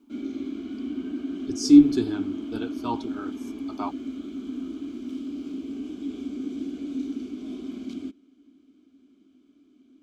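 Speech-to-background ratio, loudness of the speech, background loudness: 13.0 dB, −21.0 LKFS, −34.0 LKFS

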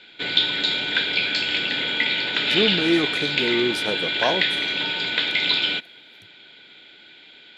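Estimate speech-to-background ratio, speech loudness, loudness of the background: −4.5 dB, −25.5 LKFS, −21.0 LKFS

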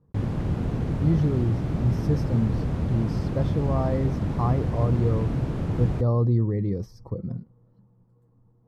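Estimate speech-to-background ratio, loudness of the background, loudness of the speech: 0.5 dB, −27.5 LKFS, −27.0 LKFS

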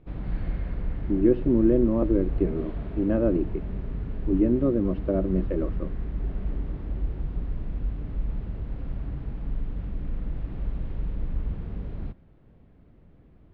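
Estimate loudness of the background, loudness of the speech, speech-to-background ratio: −34.0 LKFS, −25.0 LKFS, 9.0 dB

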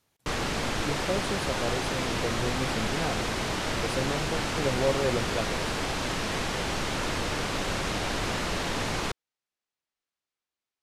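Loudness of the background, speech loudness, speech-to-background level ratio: −29.5 LKFS, −33.0 LKFS, −3.5 dB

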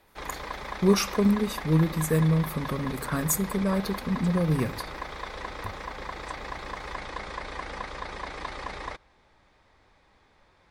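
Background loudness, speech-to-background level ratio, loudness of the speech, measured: −37.0 LKFS, 11.0 dB, −26.0 LKFS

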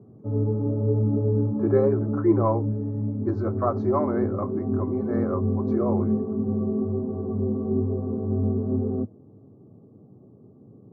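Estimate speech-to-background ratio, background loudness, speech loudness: −1.0 dB, −26.5 LKFS, −27.5 LKFS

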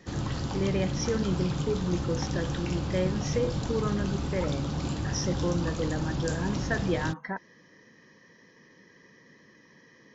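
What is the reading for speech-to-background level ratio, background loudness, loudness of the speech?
0.0 dB, −32.5 LKFS, −32.5 LKFS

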